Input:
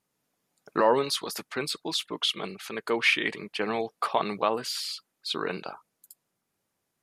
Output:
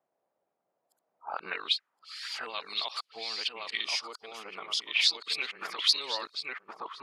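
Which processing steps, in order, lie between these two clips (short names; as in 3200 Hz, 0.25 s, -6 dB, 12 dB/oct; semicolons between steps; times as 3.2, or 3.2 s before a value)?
whole clip reversed; dynamic EQ 1600 Hz, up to -5 dB, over -46 dBFS, Q 3.9; on a send: darkening echo 1.07 s, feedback 18%, low-pass 2400 Hz, level -3.5 dB; on the sum: auto-wah 640–4700 Hz, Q 2.7, up, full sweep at -24.5 dBFS; spectral gain 3.84–4.88, 1500–4700 Hz -10 dB; gain +8.5 dB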